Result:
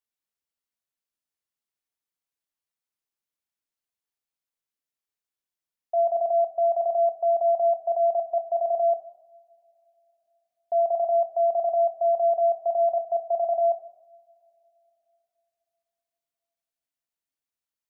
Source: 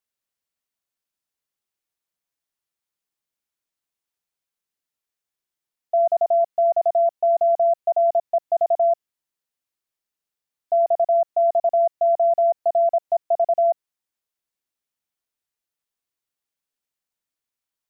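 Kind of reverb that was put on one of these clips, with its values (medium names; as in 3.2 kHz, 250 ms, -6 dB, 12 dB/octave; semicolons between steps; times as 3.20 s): two-slope reverb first 0.87 s, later 3.5 s, from -22 dB, DRR 8 dB; trim -6 dB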